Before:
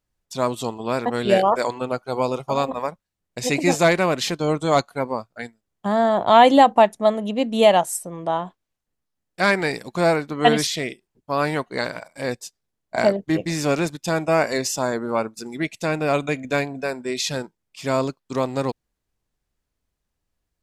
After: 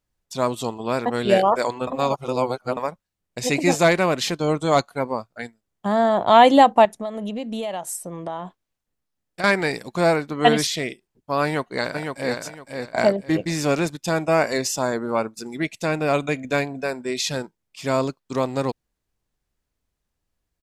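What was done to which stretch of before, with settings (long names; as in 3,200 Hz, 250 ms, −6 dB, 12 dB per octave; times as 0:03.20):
0:01.87–0:02.77: reverse
0:06.85–0:09.44: downward compressor 8 to 1, threshold −25 dBFS
0:11.43–0:12.38: delay throw 510 ms, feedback 25%, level −5 dB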